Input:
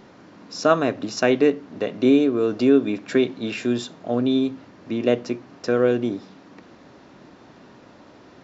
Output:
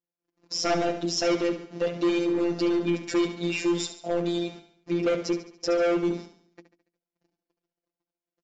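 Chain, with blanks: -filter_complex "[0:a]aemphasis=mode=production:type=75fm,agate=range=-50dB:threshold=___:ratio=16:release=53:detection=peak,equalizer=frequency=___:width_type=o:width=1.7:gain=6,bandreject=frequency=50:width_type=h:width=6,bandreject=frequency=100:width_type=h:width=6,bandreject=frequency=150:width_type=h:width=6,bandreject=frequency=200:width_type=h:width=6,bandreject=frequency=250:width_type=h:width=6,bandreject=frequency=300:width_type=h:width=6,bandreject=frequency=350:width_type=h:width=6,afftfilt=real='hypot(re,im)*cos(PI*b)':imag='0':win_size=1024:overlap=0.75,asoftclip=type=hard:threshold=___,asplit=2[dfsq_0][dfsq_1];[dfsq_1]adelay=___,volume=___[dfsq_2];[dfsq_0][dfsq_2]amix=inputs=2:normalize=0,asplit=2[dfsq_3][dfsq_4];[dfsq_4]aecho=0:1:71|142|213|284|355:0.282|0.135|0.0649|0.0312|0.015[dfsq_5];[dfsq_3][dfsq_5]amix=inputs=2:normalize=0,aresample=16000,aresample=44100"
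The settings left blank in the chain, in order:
-44dB, 400, -20.5dB, 12, -12.5dB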